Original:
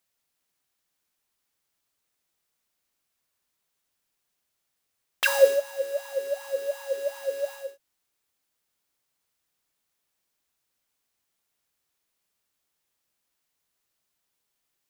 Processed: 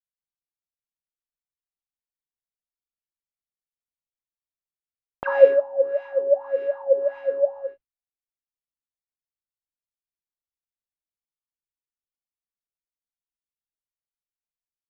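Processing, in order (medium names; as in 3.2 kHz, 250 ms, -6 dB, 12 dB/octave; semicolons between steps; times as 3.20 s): LFO low-pass sine 1.7 Hz 670–2400 Hz; expander -36 dBFS; tilt EQ -5 dB/octave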